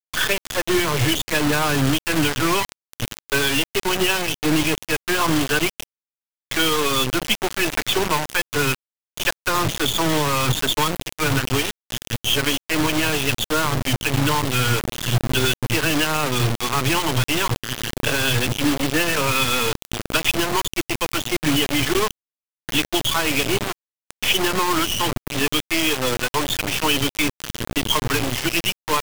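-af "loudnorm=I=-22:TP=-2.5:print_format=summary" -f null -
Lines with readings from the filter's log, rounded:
Input Integrated:    -20.9 LUFS
Input True Peak:      -5.0 dBTP
Input LRA:             1.2 LU
Input Threshold:     -31.0 LUFS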